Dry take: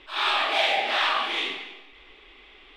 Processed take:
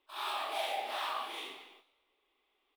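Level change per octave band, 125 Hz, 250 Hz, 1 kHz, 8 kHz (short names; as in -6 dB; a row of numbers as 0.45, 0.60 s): n/a, -14.0 dB, -10.5 dB, -6.0 dB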